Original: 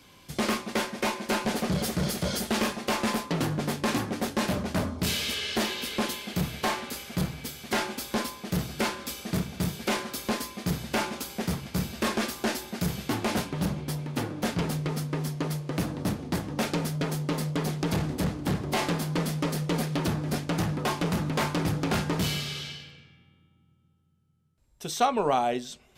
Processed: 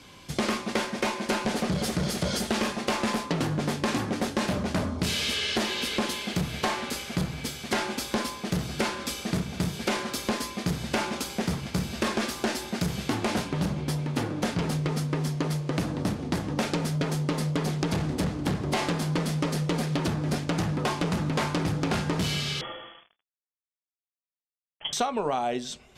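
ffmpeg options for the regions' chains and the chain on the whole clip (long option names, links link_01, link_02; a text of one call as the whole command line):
ffmpeg -i in.wav -filter_complex "[0:a]asettb=1/sr,asplit=3[link_01][link_02][link_03];[link_01]atrim=end=22.614[link_04];[link_02]atrim=start=22.61:end=24.93,asetpts=PTS-STARTPTS,afade=type=in:duration=0.004:curve=qsin,afade=type=out:start_time=2.316:duration=0.004:curve=qsin,highpass=190,acrusher=bits=7:mix=0:aa=0.5,lowpass=frequency=3000:width_type=q:width=0.5098,lowpass=frequency=3000:width_type=q:width=0.6013,lowpass=frequency=3000:width_type=q:width=0.9,lowpass=frequency=3000:width_type=q:width=2.563,afreqshift=-3500[link_05];[link_03]atrim=start=24.926[link_06];[link_04][link_05]acrossfade=duration=0.004:curve1=hsin:curve2=qsin[link_07];[link_07][link_06]acrossfade=duration=0.004:curve1=qsin:curve2=hsin,acompressor=threshold=-29dB:ratio=6,lowpass=9900,volume=5dB" out.wav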